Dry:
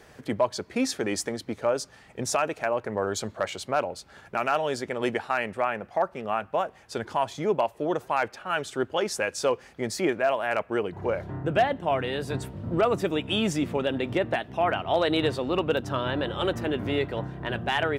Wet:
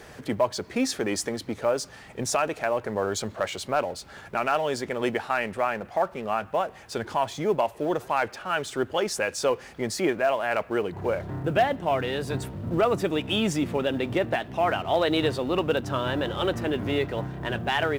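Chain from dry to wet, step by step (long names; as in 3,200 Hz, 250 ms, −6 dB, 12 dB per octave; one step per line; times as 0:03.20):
mu-law and A-law mismatch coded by mu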